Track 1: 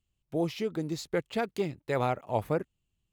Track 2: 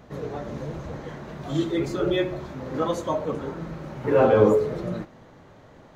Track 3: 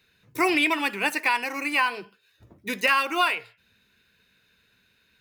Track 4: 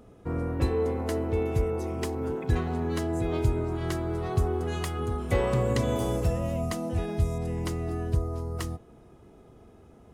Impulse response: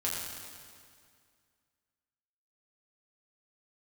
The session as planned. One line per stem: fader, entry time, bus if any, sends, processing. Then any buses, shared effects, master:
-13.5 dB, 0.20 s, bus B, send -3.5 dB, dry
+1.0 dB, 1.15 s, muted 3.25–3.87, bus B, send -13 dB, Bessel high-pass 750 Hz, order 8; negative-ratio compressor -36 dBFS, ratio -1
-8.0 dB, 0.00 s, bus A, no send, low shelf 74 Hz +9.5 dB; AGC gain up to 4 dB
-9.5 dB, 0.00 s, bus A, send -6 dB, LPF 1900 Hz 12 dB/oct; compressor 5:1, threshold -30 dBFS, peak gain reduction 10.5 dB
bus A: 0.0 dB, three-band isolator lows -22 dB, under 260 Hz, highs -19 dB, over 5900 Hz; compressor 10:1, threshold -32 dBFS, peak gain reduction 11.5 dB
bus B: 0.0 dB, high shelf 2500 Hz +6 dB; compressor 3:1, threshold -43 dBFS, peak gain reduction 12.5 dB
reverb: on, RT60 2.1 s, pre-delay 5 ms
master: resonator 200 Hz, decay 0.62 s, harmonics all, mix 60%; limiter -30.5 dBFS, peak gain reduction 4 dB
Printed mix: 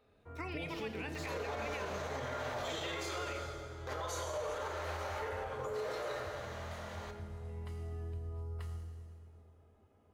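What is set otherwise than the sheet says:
stem 1 -13.5 dB -> -6.5 dB; stem 2 +1.0 dB -> +13.0 dB; stem 4: missing LPF 1900 Hz 12 dB/oct

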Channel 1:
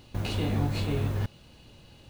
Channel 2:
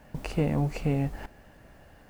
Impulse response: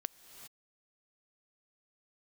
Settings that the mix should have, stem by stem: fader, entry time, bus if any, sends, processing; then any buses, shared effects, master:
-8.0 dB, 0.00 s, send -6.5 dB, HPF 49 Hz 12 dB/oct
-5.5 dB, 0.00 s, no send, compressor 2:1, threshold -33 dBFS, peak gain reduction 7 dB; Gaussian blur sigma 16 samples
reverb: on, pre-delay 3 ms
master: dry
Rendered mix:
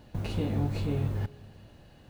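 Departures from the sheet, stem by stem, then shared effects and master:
stem 2: missing Gaussian blur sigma 16 samples; master: extra tilt shelf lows +3 dB, about 790 Hz

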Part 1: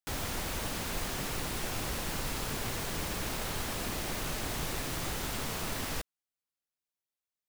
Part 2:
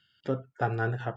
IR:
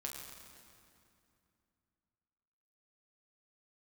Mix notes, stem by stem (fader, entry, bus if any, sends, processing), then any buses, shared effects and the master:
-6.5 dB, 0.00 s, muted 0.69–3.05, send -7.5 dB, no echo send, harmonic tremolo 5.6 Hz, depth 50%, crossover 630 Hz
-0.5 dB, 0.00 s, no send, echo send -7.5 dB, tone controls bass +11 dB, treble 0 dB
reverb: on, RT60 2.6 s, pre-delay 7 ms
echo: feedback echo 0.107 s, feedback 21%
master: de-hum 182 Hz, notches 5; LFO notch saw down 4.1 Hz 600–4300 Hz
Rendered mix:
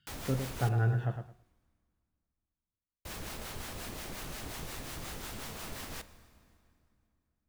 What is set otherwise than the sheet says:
stem 2 -0.5 dB -> -7.5 dB; master: missing LFO notch saw down 4.1 Hz 600–4300 Hz

